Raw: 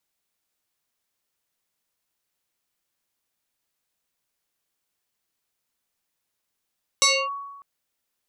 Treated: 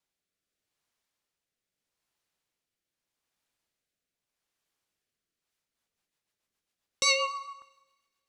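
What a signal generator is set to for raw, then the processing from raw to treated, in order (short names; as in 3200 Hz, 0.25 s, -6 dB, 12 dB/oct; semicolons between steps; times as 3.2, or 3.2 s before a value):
FM tone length 0.60 s, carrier 1120 Hz, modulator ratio 1.48, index 4.5, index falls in 0.27 s linear, decay 1.17 s, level -13 dB
high shelf 9800 Hz -10.5 dB; rotary speaker horn 0.8 Hz, later 7.5 Hz, at 5.25; two-slope reverb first 0.99 s, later 2.5 s, from -27 dB, DRR 14 dB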